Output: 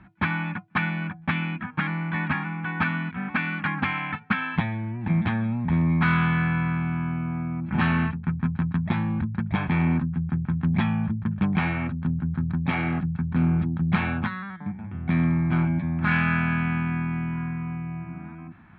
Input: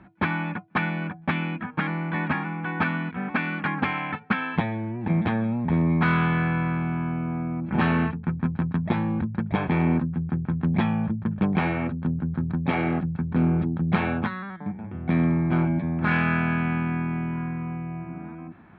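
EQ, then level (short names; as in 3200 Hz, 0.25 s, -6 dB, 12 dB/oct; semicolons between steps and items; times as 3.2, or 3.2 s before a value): air absorption 99 m; bell 460 Hz -13.5 dB 1.5 oct; +3.5 dB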